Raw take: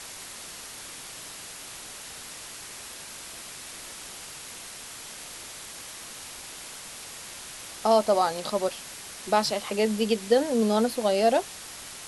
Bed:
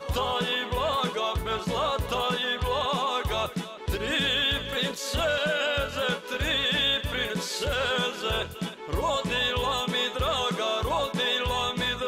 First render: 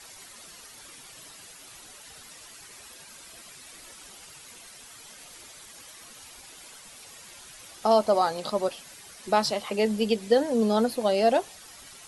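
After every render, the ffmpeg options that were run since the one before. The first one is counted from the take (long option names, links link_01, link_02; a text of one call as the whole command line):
ffmpeg -i in.wav -af "afftdn=noise_reduction=10:noise_floor=-42" out.wav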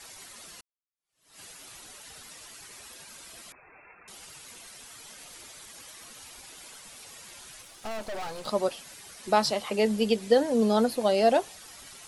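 ffmpeg -i in.wav -filter_complex "[0:a]asettb=1/sr,asplit=3[link_01][link_02][link_03];[link_01]atrim=end=3.524[link_04];[link_02]atrim=start=3.52:end=4.08,asetpts=PTS-STARTPTS,afade=type=in:duration=0.004:curve=qsin,afade=type=out:start_time=0.556:duration=0.004:curve=qsin,lowpass=frequency=2300:width_type=q:width=0.5098,lowpass=frequency=2300:width_type=q:width=0.6013,lowpass=frequency=2300:width_type=q:width=0.9,lowpass=frequency=2300:width_type=q:width=2.563,afreqshift=-2700[link_05];[link_03]atrim=start=4.076[link_06];[link_04][link_05]acrossfade=duration=0.004:curve1=hsin:curve2=qsin[link_07];[link_07][link_06]acrossfade=duration=0.004:curve1=qsin:curve2=hsin,asplit=3[link_08][link_09][link_10];[link_08]afade=type=out:start_time=7.61:duration=0.02[link_11];[link_09]aeval=exprs='(tanh(50.1*val(0)+0.65)-tanh(0.65))/50.1':channel_layout=same,afade=type=in:start_time=7.61:duration=0.02,afade=type=out:start_time=8.46:duration=0.02[link_12];[link_10]afade=type=in:start_time=8.46:duration=0.02[link_13];[link_11][link_12][link_13]amix=inputs=3:normalize=0,asplit=2[link_14][link_15];[link_14]atrim=end=0.61,asetpts=PTS-STARTPTS,afade=type=out:start_time=0.606:duration=0.004:curve=hsin[link_16];[link_15]atrim=start=0.61,asetpts=PTS-STARTPTS,afade=type=in:duration=0.79:curve=exp[link_17];[link_16][link_17]concat=n=2:v=0:a=1" out.wav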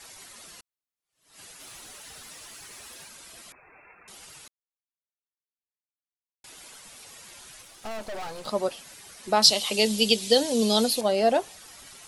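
ffmpeg -i in.wav -filter_complex "[0:a]asettb=1/sr,asplit=3[link_01][link_02][link_03];[link_01]atrim=end=1.604[link_04];[link_02]atrim=start=1.6:end=3.08,asetpts=PTS-STARTPTS,afade=type=in:duration=0.004:curve=qsin,afade=type=out:start_time=1.476:duration=0.004:curve=qsin,aeval=exprs='val(0)+0.5*0.00266*sgn(val(0))':channel_layout=same[link_05];[link_03]atrim=start=3.076[link_06];[link_04][link_05]acrossfade=duration=0.004:curve1=hsin:curve2=qsin[link_07];[link_07][link_06]acrossfade=duration=0.004:curve1=qsin:curve2=hsin,asettb=1/sr,asplit=3[link_08][link_09][link_10];[link_08]atrim=end=9.424[link_11];[link_09]atrim=start=9.42:end=11.01,asetpts=PTS-STARTPTS,afade=type=in:duration=0.004:curve=qsin,afade=type=out:start_time=1.586:duration=0.004:curve=qsin,highshelf=frequency=2400:width_type=q:width=1.5:gain=11.5[link_12];[link_10]atrim=start=11.006[link_13];[link_11][link_12]acrossfade=duration=0.004:curve1=hsin:curve2=qsin[link_14];[link_14][link_13]acrossfade=duration=0.004:curve1=qsin:curve2=hsin,asplit=3[link_15][link_16][link_17];[link_15]atrim=end=4.48,asetpts=PTS-STARTPTS,afade=type=out:start_time=4.476:duration=0.004:curve=hsin[link_18];[link_16]atrim=start=4.48:end=6.44,asetpts=PTS-STARTPTS,volume=0[link_19];[link_17]atrim=start=6.44,asetpts=PTS-STARTPTS,afade=type=in:duration=0.004:curve=hsin[link_20];[link_18][link_19][link_20]concat=n=3:v=0:a=1" out.wav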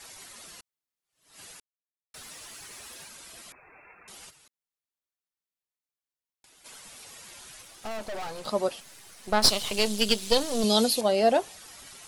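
ffmpeg -i in.wav -filter_complex "[0:a]asplit=3[link_01][link_02][link_03];[link_01]afade=type=out:start_time=4.29:duration=0.02[link_04];[link_02]acompressor=threshold=-57dB:ratio=4:attack=3.2:release=140:knee=1:detection=peak,afade=type=in:start_time=4.29:duration=0.02,afade=type=out:start_time=6.64:duration=0.02[link_05];[link_03]afade=type=in:start_time=6.64:duration=0.02[link_06];[link_04][link_05][link_06]amix=inputs=3:normalize=0,asettb=1/sr,asplit=3[link_07][link_08][link_09];[link_07]atrim=end=8.804[link_10];[link_08]atrim=start=8.8:end=10.64,asetpts=PTS-STARTPTS,afade=type=in:duration=0.004:curve=qsin,afade=type=out:start_time=1.836:duration=0.004:curve=qsin,aeval=exprs='if(lt(val(0),0),0.251*val(0),val(0))':channel_layout=same[link_11];[link_09]atrim=start=10.636[link_12];[link_10][link_11]acrossfade=duration=0.004:curve1=hsin:curve2=qsin[link_13];[link_13][link_12]acrossfade=duration=0.004:curve1=qsin:curve2=hsin,asplit=3[link_14][link_15][link_16];[link_14]atrim=end=1.6,asetpts=PTS-STARTPTS,afade=type=out:start_time=1.596:duration=0.004:curve=hsin[link_17];[link_15]atrim=start=1.6:end=2.14,asetpts=PTS-STARTPTS,volume=0[link_18];[link_16]atrim=start=2.14,asetpts=PTS-STARTPTS,afade=type=in:duration=0.004:curve=hsin[link_19];[link_17][link_18][link_19]concat=n=3:v=0:a=1" out.wav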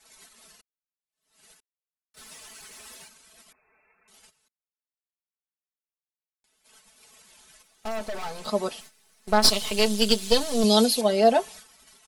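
ffmpeg -i in.wav -af "agate=range=-14dB:threshold=-45dB:ratio=16:detection=peak,aecho=1:1:4.6:0.69" out.wav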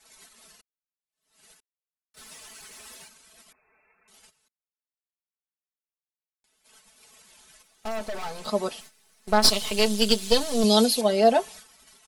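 ffmpeg -i in.wav -af anull out.wav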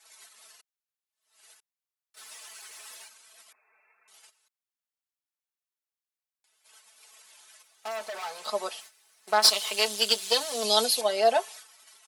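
ffmpeg -i in.wav -af "highpass=650" out.wav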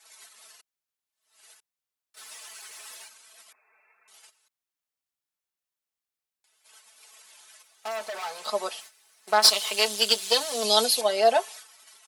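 ffmpeg -i in.wav -af "volume=2dB" out.wav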